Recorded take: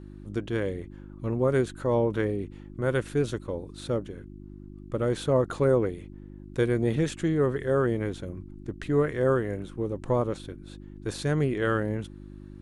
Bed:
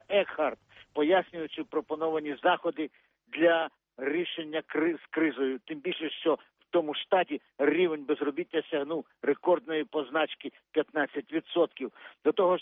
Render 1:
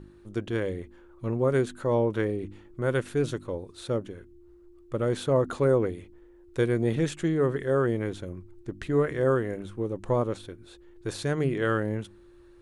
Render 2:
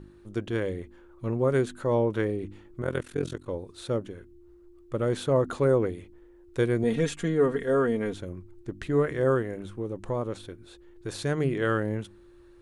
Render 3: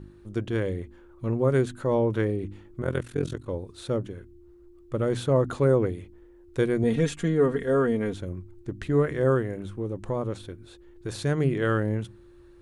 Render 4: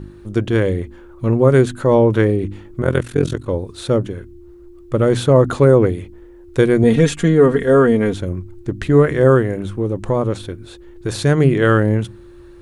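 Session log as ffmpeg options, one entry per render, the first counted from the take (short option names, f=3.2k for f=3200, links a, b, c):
-af "bandreject=f=50:t=h:w=4,bandreject=f=100:t=h:w=4,bandreject=f=150:t=h:w=4,bandreject=f=200:t=h:w=4,bandreject=f=250:t=h:w=4,bandreject=f=300:t=h:w=4"
-filter_complex "[0:a]asplit=3[a][b][c];[a]afade=t=out:st=2.81:d=0.02[d];[b]tremolo=f=43:d=0.919,afade=t=in:st=2.81:d=0.02,afade=t=out:st=3.46:d=0.02[e];[c]afade=t=in:st=3.46:d=0.02[f];[d][e][f]amix=inputs=3:normalize=0,asettb=1/sr,asplit=3[g][h][i];[g]atrim=end=6.834[j];[h]atrim=start=6.83:end=8.14,asetpts=PTS-STARTPTS,afade=t=in:d=0.004:c=qsin,afade=t=out:st=1.306:d=0.004:c=qsin,aecho=1:1:4.3:0.65,atrim=end_sample=57771[k];[i]atrim=start=8.136[l];[j][k]acrossfade=d=0.004:c1=hsin:c2=qsin[m];[m][l]acrossfade=d=0.004:c1=qsin:c2=hsin,asettb=1/sr,asplit=3[n][o][p];[n]atrim=end=9.424[q];[o]atrim=start=9.42:end=11.14,asetpts=PTS-STARTPTS,afade=t=in:d=0.004:c=qsin,afade=t=out:st=1.716:d=0.004:c=qsin,acompressor=threshold=-32dB:ratio=1.5:attack=3.2:release=140:knee=1:detection=peak[r];[p]atrim=start=11.136[s];[q][r]acrossfade=d=0.004:c1=hsin:c2=qsin[t];[t][s]acrossfade=d=0.004:c1=qsin:c2=hsin"
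-af "equalizer=f=84:t=o:w=2.6:g=5.5,bandreject=f=60:t=h:w=6,bandreject=f=120:t=h:w=6"
-af "volume=11dB,alimiter=limit=-2dB:level=0:latency=1"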